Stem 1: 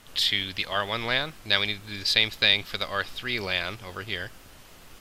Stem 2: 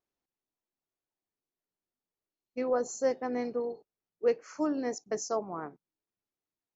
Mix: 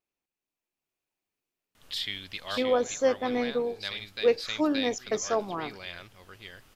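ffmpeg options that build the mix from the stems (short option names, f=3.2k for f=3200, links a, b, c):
-filter_complex "[0:a]adelay=1750,volume=-14.5dB,asplit=2[a][b];[b]volume=-4.5dB[c];[1:a]equalizer=f=2.5k:t=o:w=0.39:g=9,volume=-1.5dB,asplit=2[d][e];[e]apad=whole_len=297885[f];[a][f]sidechaincompress=threshold=-42dB:ratio=8:attack=16:release=1150[g];[c]aecho=0:1:575:1[h];[g][d][h]amix=inputs=3:normalize=0,dynaudnorm=f=130:g=11:m=5.5dB"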